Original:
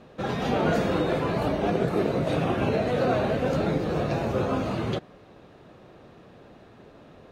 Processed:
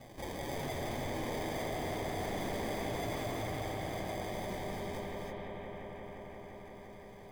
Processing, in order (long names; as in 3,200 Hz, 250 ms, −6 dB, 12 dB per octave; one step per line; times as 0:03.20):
source passing by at 0:02.24, 21 m/s, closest 23 metres
high-pass filter 830 Hz 24 dB per octave
decimation without filtering 32×
flanger 0.94 Hz, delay 7.5 ms, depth 6.3 ms, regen +60%
hard clipping −39.5 dBFS, distortion −10 dB
on a send: bucket-brigade delay 174 ms, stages 4,096, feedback 80%, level −5.5 dB
on the sum: reverb whose tail is shaped and stops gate 340 ms rising, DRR 2 dB
envelope flattener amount 50%
level +1 dB